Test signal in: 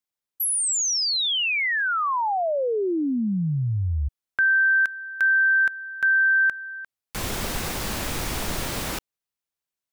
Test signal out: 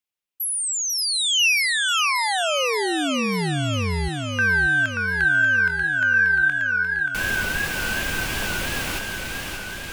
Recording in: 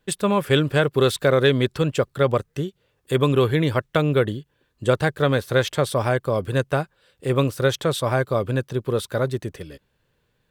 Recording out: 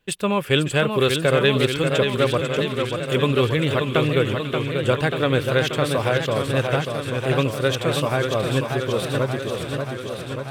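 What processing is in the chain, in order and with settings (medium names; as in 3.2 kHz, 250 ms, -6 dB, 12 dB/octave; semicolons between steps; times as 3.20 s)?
peaking EQ 2.7 kHz +8 dB 0.53 oct; on a send: feedback echo behind a high-pass 494 ms, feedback 52%, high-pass 1.9 kHz, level -10 dB; on the sum: modulated delay 584 ms, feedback 71%, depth 114 cents, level -5.5 dB; trim -1.5 dB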